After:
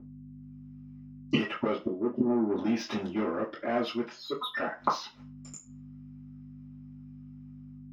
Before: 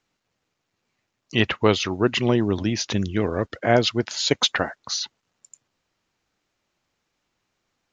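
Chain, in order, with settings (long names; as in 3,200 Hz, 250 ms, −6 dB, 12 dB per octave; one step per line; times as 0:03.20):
0:04.13–0:04.57: expanding power law on the bin magnitudes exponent 3.2
high-pass filter 87 Hz 12 dB per octave
downward expander −43 dBFS
0:01.75–0:02.56: elliptic low-pass filter 630 Hz, stop band 40 dB
automatic gain control gain up to 14 dB
soft clipping −14.5 dBFS, distortion −9 dB
mains hum 50 Hz, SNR 28 dB
gate with flip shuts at −23 dBFS, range −24 dB
convolution reverb RT60 0.25 s, pre-delay 3 ms, DRR −9.5 dB
level −1.5 dB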